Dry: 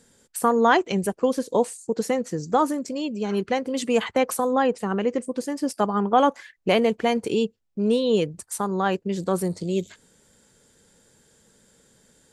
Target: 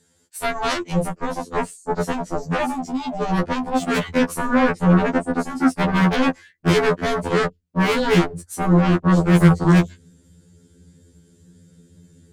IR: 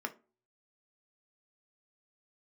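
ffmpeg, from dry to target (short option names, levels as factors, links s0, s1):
-filter_complex "[0:a]highpass=64,asubboost=boost=12:cutoff=240,asplit=2[s0][s1];[s1]aeval=exprs='sgn(val(0))*max(abs(val(0))-0.0237,0)':c=same,volume=0.447[s2];[s0][s2]amix=inputs=2:normalize=0,afreqshift=-14,aeval=exprs='0.841*(cos(1*acos(clip(val(0)/0.841,-1,1)))-cos(1*PI/2))+0.00596*(cos(2*acos(clip(val(0)/0.841,-1,1)))-cos(2*PI/2))+0.00668*(cos(5*acos(clip(val(0)/0.841,-1,1)))-cos(5*PI/2))+0.376*(cos(7*acos(clip(val(0)/0.841,-1,1)))-cos(7*PI/2))':c=same,afftfilt=real='re*2*eq(mod(b,4),0)':imag='im*2*eq(mod(b,4),0)':win_size=2048:overlap=0.75,volume=0.447"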